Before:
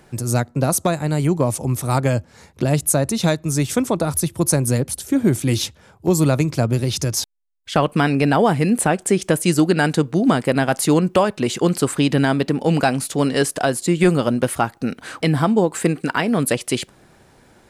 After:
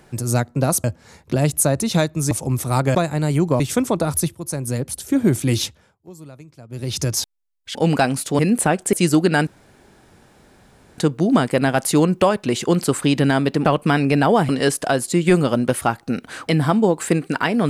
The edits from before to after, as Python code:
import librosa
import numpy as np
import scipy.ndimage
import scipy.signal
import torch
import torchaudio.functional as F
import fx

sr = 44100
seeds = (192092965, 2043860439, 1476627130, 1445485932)

y = fx.edit(x, sr, fx.swap(start_s=0.84, length_s=0.65, other_s=2.13, other_length_s=1.47),
    fx.fade_in_from(start_s=4.35, length_s=0.8, floor_db=-15.0),
    fx.fade_down_up(start_s=5.65, length_s=1.36, db=-23.5, fade_s=0.32),
    fx.swap(start_s=7.75, length_s=0.84, other_s=12.59, other_length_s=0.64),
    fx.cut(start_s=9.13, length_s=0.25),
    fx.insert_room_tone(at_s=9.92, length_s=1.51), tone=tone)